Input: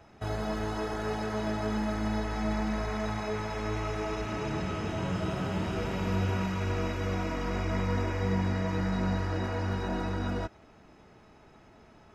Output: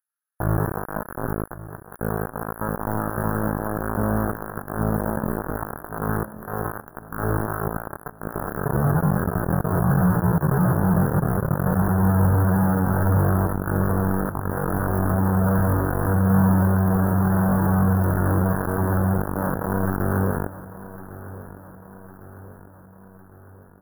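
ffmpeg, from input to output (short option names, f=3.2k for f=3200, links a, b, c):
-filter_complex "[0:a]highpass=97,lowshelf=f=210:t=q:w=3:g=9,acrossover=split=3400[a][b];[a]acrusher=bits=3:mix=0:aa=0.000001[c];[c][b]amix=inputs=2:normalize=0,atempo=0.51,asuperstop=centerf=4400:order=20:qfactor=0.51,asplit=2[d][e];[e]aecho=0:1:1105|2210|3315|4420|5525:0.158|0.0872|0.0479|0.0264|0.0145[f];[d][f]amix=inputs=2:normalize=0,volume=2.5dB"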